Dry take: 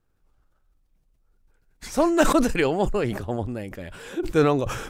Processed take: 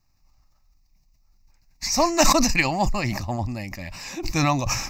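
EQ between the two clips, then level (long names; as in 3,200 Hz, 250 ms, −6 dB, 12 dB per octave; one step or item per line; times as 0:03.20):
high-shelf EQ 2,100 Hz +8 dB
parametric band 5,400 Hz +7 dB 0.58 octaves
phaser with its sweep stopped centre 2,200 Hz, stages 8
+4.0 dB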